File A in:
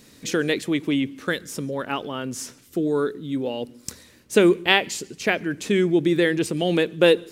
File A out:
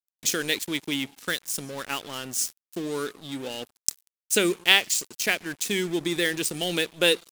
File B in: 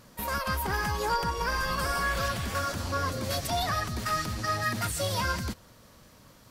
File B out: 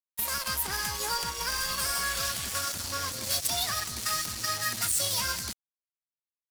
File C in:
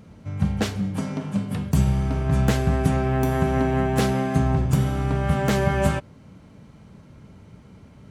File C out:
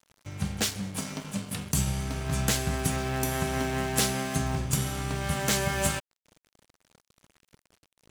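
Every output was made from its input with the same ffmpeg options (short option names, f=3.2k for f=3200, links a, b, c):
-filter_complex "[0:a]lowpass=11k,asplit=2[a][b];[b]acompressor=threshold=-35dB:ratio=10,volume=-2dB[c];[a][c]amix=inputs=2:normalize=0,aeval=exprs='sgn(val(0))*max(abs(val(0))-0.0158,0)':c=same,crystalizer=i=7.5:c=0,volume=-9dB"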